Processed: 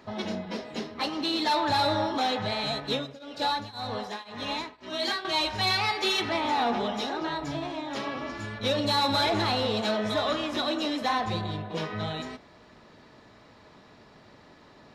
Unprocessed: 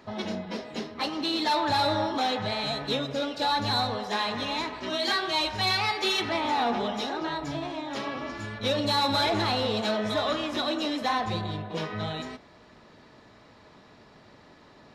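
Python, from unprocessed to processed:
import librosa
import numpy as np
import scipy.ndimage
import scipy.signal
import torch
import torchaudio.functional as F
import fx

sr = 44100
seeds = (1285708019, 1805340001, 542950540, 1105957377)

y = fx.tremolo_shape(x, sr, shape='triangle', hz=1.9, depth_pct=95, at=(2.8, 5.25))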